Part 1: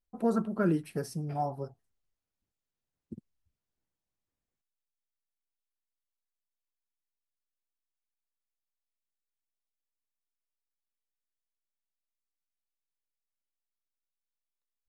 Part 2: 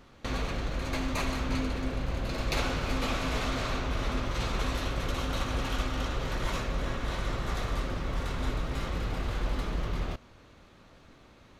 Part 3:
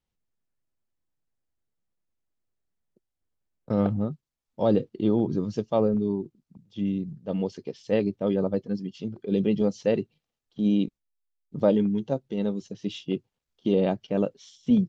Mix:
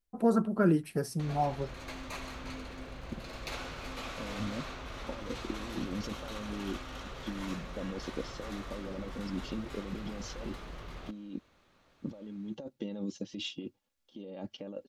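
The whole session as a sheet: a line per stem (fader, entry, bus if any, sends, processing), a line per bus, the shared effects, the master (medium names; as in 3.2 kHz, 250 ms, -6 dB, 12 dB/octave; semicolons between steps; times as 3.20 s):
+2.0 dB, 0.00 s, no send, none
-12.0 dB, 0.95 s, no send, bass shelf 350 Hz -6.5 dB; level rider gain up to 4 dB
-7.5 dB, 0.50 s, no send, bass shelf 110 Hz -8 dB; comb 3.6 ms, depth 55%; compressor with a negative ratio -33 dBFS, ratio -1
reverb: none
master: none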